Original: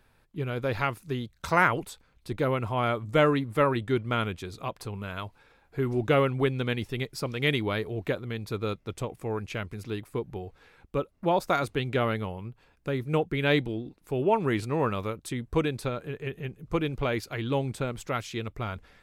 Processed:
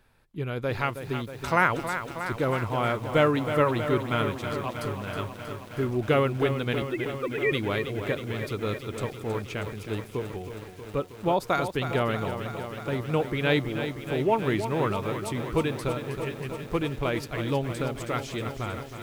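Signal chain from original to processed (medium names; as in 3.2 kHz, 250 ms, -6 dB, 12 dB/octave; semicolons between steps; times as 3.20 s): 6.82–7.52 s: formants replaced by sine waves; bit-crushed delay 318 ms, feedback 80%, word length 8-bit, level -9 dB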